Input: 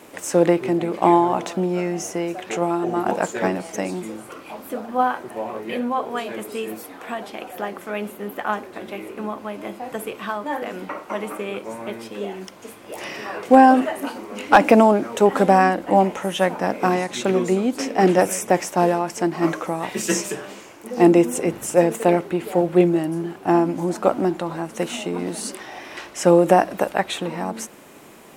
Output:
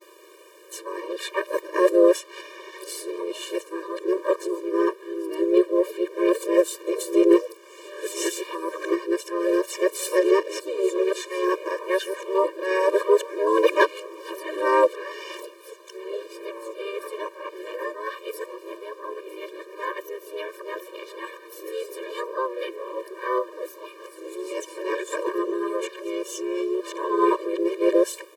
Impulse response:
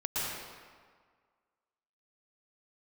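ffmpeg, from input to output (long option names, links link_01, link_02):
-filter_complex "[0:a]areverse,asplit=4[link_01][link_02][link_03][link_04];[link_02]asetrate=22050,aresample=44100,atempo=2,volume=-6dB[link_05];[link_03]asetrate=52444,aresample=44100,atempo=0.840896,volume=-6dB[link_06];[link_04]asetrate=66075,aresample=44100,atempo=0.66742,volume=-12dB[link_07];[link_01][link_05][link_06][link_07]amix=inputs=4:normalize=0,afftfilt=real='re*eq(mod(floor(b*sr/1024/310),2),1)':imag='im*eq(mod(floor(b*sr/1024/310),2),1)':win_size=1024:overlap=0.75,volume=-3dB"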